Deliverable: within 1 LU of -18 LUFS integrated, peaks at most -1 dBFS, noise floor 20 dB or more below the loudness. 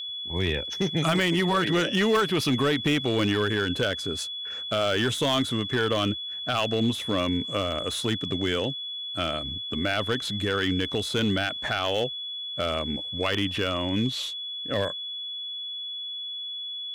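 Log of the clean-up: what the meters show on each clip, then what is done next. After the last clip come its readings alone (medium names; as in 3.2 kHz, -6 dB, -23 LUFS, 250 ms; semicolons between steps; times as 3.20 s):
clipped samples 0.7%; clipping level -17.0 dBFS; steady tone 3.4 kHz; tone level -32 dBFS; loudness -26.5 LUFS; peak level -17.0 dBFS; loudness target -18.0 LUFS
-> clip repair -17 dBFS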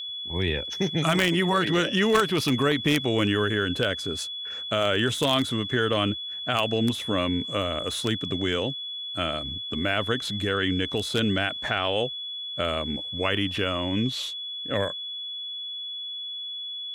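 clipped samples 0.0%; steady tone 3.4 kHz; tone level -32 dBFS
-> band-stop 3.4 kHz, Q 30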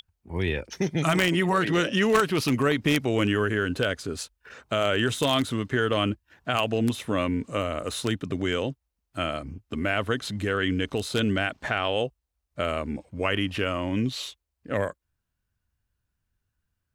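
steady tone not found; loudness -26.5 LUFS; peak level -7.5 dBFS; loudness target -18.0 LUFS
-> trim +8.5 dB; peak limiter -1 dBFS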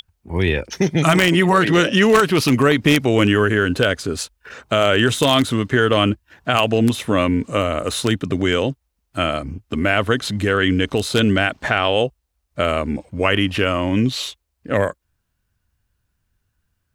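loudness -18.0 LUFS; peak level -1.0 dBFS; noise floor -73 dBFS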